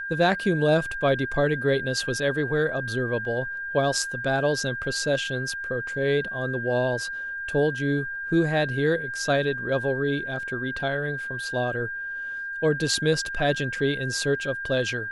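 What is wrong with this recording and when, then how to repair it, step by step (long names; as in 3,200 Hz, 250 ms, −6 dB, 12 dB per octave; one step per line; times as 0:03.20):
whistle 1,600 Hz −30 dBFS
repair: notch filter 1,600 Hz, Q 30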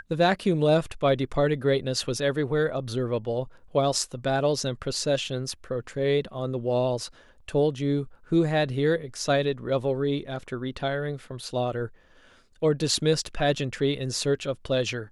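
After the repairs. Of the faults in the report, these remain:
none of them is left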